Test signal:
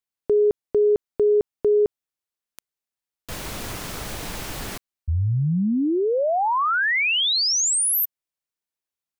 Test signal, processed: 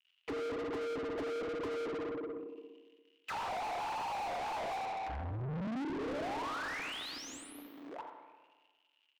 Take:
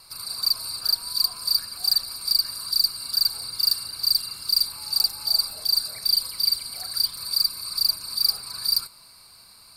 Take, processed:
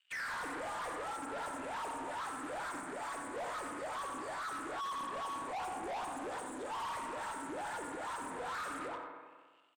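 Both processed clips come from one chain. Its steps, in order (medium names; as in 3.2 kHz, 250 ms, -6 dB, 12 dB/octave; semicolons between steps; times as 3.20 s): frequency axis rescaled in octaves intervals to 121%; crackle 180 per s -39 dBFS; peak limiter -21 dBFS; gate -47 dBFS, range -40 dB; auto-wah 280–2900 Hz, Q 13, down, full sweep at -28 dBFS; spring tank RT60 1.4 s, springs 31/58 ms, chirp 65 ms, DRR 6.5 dB; compression 12:1, threshold -47 dBFS; on a send: delay 87 ms -11.5 dB; on the sum: overdrive pedal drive 42 dB, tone 2.9 kHz, clips at -38 dBFS; loudspeaker Doppler distortion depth 0.17 ms; trim +6.5 dB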